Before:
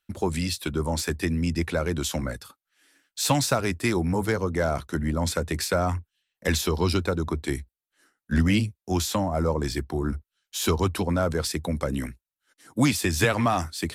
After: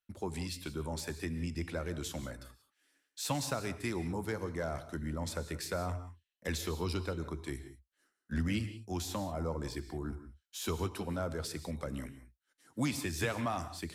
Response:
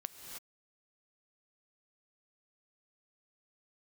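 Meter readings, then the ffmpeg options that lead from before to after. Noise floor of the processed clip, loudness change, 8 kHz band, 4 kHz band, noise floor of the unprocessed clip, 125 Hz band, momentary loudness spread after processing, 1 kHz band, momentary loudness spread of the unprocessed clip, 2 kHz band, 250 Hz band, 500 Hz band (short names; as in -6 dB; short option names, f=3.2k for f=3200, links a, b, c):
under -85 dBFS, -11.5 dB, -12.0 dB, -12.0 dB, under -85 dBFS, -11.5 dB, 9 LU, -12.0 dB, 9 LU, -12.0 dB, -12.0 dB, -11.5 dB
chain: -filter_complex "[1:a]atrim=start_sample=2205,afade=t=out:st=0.24:d=0.01,atrim=end_sample=11025[a];[0:a][a]afir=irnorm=-1:irlink=0,volume=-8.5dB"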